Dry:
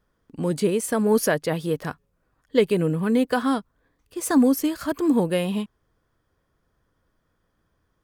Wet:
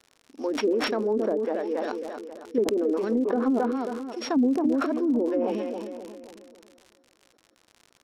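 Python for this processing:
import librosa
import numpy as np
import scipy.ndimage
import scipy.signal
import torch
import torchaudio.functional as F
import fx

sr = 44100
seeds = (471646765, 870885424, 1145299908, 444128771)

y = np.r_[np.sort(x[:len(x) // 8 * 8].reshape(-1, 8), axis=1).ravel(), x[len(x) // 8 * 8:]]
y = fx.brickwall_highpass(y, sr, low_hz=220.0)
y = fx.echo_tape(y, sr, ms=270, feedback_pct=50, wet_db=-8, lp_hz=1800.0, drive_db=7.0, wow_cents=19)
y = fx.rotary(y, sr, hz=6.0)
y = fx.peak_eq(y, sr, hz=760.0, db=4.5, octaves=0.65)
y = fx.env_lowpass_down(y, sr, base_hz=360.0, full_db=-17.0)
y = fx.high_shelf(y, sr, hz=4000.0, db=-9.5)
y = fx.dmg_crackle(y, sr, seeds[0], per_s=89.0, level_db=-38.0)
y = scipy.signal.sosfilt(scipy.signal.butter(2, 9400.0, 'lowpass', fs=sr, output='sos'), y)
y = fx.sustainer(y, sr, db_per_s=24.0)
y = y * 10.0 ** (-2.0 / 20.0)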